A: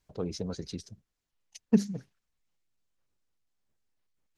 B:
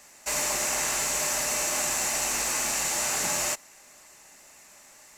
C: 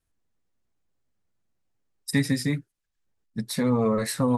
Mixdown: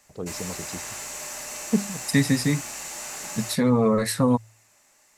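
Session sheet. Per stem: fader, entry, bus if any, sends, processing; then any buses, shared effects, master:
+0.5 dB, 0.00 s, no send, none
-8.0 dB, 0.00 s, no send, none
+3.0 dB, 0.00 s, no send, none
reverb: none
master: de-hum 55.39 Hz, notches 2

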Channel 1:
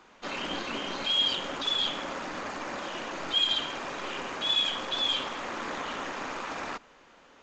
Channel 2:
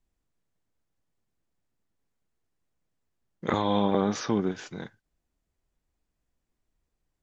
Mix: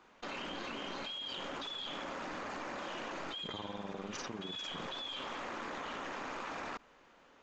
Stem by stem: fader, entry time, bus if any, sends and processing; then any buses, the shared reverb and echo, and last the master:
+2.5 dB, 0.00 s, no send, treble shelf 4.4 kHz -10 dB; compression 3:1, threshold -39 dBFS, peak gain reduction 10.5 dB
-0.5 dB, 0.00 s, no send, AM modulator 20 Hz, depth 85%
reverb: none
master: treble shelf 4.6 kHz +5.5 dB; level held to a coarse grid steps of 21 dB

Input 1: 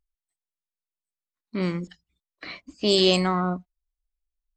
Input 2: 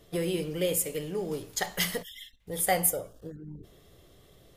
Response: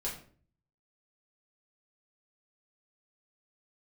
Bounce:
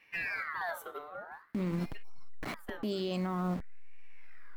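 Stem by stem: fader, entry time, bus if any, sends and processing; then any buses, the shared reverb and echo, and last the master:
+2.5 dB, 0.00 s, no send, send-on-delta sampling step -33 dBFS; peaking EQ 220 Hz +7 dB 0.4 oct; compression 2.5:1, threshold -30 dBFS, peak gain reduction 11 dB
+1.5 dB, 0.00 s, no send, high-order bell 6.5 kHz -12 dB; ring modulator with a swept carrier 1.6 kHz, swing 45%, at 0.5 Hz; auto duck -15 dB, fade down 1.00 s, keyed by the first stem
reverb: none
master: treble shelf 2.9 kHz -11 dB; peak limiter -26.5 dBFS, peak gain reduction 9.5 dB

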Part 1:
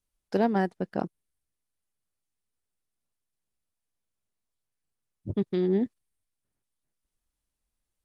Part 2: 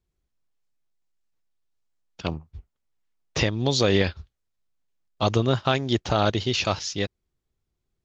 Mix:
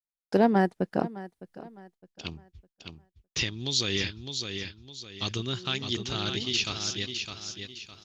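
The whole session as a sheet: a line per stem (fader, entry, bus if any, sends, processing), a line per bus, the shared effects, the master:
+3.0 dB, 0.00 s, no send, echo send -17 dB, auto duck -24 dB, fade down 0.45 s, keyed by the second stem
-10.5 dB, 0.00 s, no send, echo send -6.5 dB, FFT filter 380 Hz 0 dB, 570 Hz -11 dB, 3.1 kHz +10 dB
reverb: none
echo: feedback delay 609 ms, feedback 35%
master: expander -53 dBFS

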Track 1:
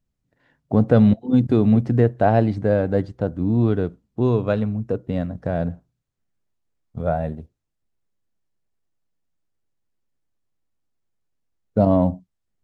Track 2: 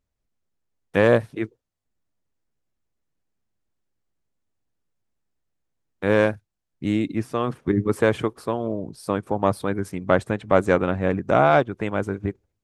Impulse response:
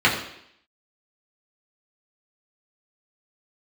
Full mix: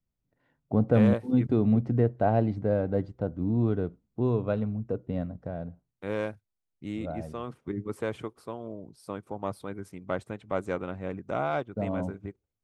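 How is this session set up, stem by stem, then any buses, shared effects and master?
5.22 s -7 dB -> 5.70 s -14.5 dB, 0.00 s, no send, treble shelf 3.1 kHz -9 dB
-12.5 dB, 0.00 s, no send, none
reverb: none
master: band-stop 1.7 kHz, Q 12

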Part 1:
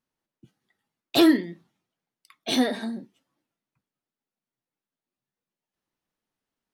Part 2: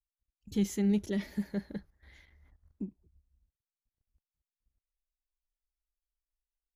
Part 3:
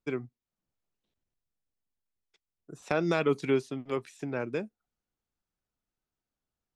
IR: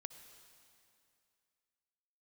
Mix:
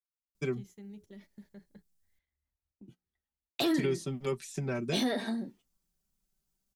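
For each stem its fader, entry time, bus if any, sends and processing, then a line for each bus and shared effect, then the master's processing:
-1.0 dB, 2.45 s, bus A, no send, none
-9.0 dB, 0.00 s, bus A, no send, hum notches 60/120/180/240/300/360/420 Hz; compression 2:1, threshold -45 dBFS, peak gain reduction 11.5 dB
-3.5 dB, 0.35 s, muted 2.19–3.74 s, no bus, no send, tone controls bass +11 dB, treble +13 dB; comb 5.2 ms, depth 82%; peak limiter -15 dBFS, peak gain reduction 7 dB
bus A: 0.0 dB, gate -54 dBFS, range -18 dB; peak limiter -17.5 dBFS, peak gain reduction 8 dB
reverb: none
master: compression 1.5:1, threshold -32 dBFS, peak gain reduction 4.5 dB

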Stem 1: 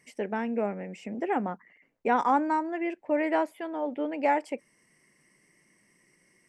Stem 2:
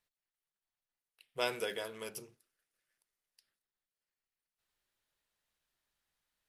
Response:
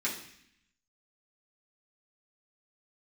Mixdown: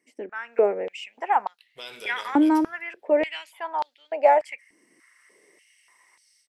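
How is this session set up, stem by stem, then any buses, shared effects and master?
-10.5 dB, 0.00 s, no send, level rider gain up to 15 dB; step-sequenced high-pass 3.4 Hz 300–4200 Hz
-5.5 dB, 0.40 s, send -12 dB, peak limiter -28.5 dBFS, peak gain reduction 9.5 dB; peaking EQ 3.6 kHz +13 dB 1.1 oct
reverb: on, RT60 0.65 s, pre-delay 3 ms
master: none

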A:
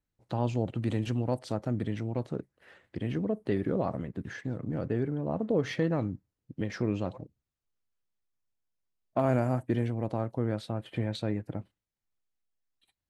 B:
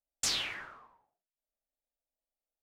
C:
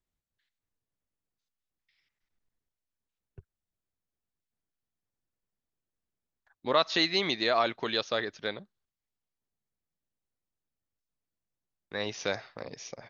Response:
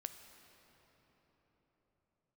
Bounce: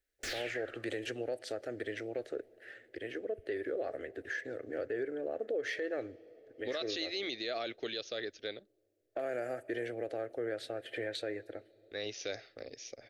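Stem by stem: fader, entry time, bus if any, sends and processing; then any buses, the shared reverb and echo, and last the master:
-0.5 dB, 0.00 s, bus A, send -11.5 dB, resonant low shelf 300 Hz -13 dB, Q 1.5; auto duck -6 dB, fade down 0.85 s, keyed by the third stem
-0.5 dB, 0.00 s, bus A, no send, slew-rate limiter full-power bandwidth 54 Hz
-3.0 dB, 0.00 s, no bus, no send, none
bus A: 0.0 dB, peaking EQ 1.7 kHz +13 dB 0.71 oct; compression 3:1, threshold -31 dBFS, peak gain reduction 8 dB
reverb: on, pre-delay 8 ms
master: static phaser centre 410 Hz, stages 4; peak limiter -27 dBFS, peak gain reduction 9.5 dB

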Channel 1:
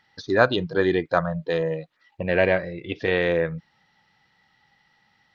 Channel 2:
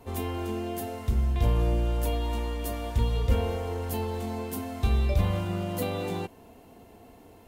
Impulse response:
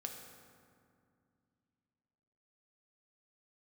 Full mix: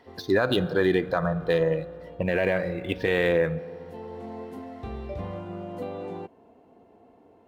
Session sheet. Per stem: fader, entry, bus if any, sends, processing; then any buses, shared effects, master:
0.0 dB, 0.00 s, send -10 dB, median filter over 5 samples
-2.0 dB, 0.00 s, no send, band-pass filter 490 Hz, Q 0.58; auto duck -12 dB, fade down 0.25 s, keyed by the first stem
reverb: on, RT60 2.3 s, pre-delay 3 ms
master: peak limiter -12 dBFS, peak gain reduction 11 dB

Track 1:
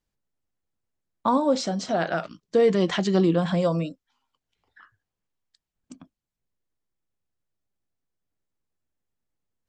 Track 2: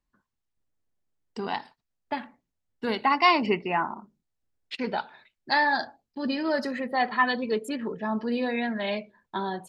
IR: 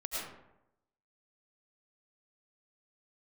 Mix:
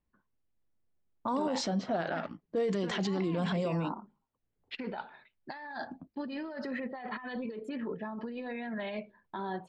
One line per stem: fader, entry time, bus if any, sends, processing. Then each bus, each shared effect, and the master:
-0.5 dB, 0.00 s, no send, level-controlled noise filter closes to 540 Hz, open at -17.5 dBFS; peak limiter -22 dBFS, peak gain reduction 12 dB
-7.0 dB, 0.00 s, no send, low-pass 3 kHz 12 dB/octave; compressor with a negative ratio -32 dBFS, ratio -1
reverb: none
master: peak limiter -24 dBFS, peak gain reduction 7 dB

